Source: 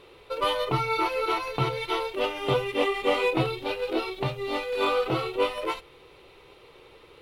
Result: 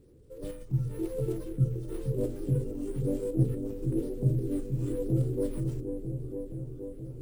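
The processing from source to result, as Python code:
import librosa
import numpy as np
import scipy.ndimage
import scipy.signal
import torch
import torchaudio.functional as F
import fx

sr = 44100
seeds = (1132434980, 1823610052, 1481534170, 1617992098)

p1 = scipy.signal.sosfilt(scipy.signal.ellip(3, 1.0, 40, [490.0, 8800.0], 'bandstop', fs=sr, output='sos'), x)
p2 = fx.band_shelf(p1, sr, hz=600.0, db=-13.5, octaves=1.7)
p3 = fx.hum_notches(p2, sr, base_hz=50, count=9)
p4 = fx.level_steps(p3, sr, step_db=14)
p5 = p3 + (p4 * librosa.db_to_amplitude(0.0))
p6 = fx.transient(p5, sr, attack_db=-3, sustain_db=1)
p7 = fx.rider(p6, sr, range_db=3, speed_s=0.5)
p8 = fx.phaser_stages(p7, sr, stages=8, low_hz=470.0, high_hz=4400.0, hz=1.0, feedback_pct=30)
p9 = p8 + fx.echo_opening(p8, sr, ms=473, hz=400, octaves=1, feedback_pct=70, wet_db=-6, dry=0)
p10 = fx.running_max(p9, sr, window=3)
y = p10 * librosa.db_to_amplitude(4.0)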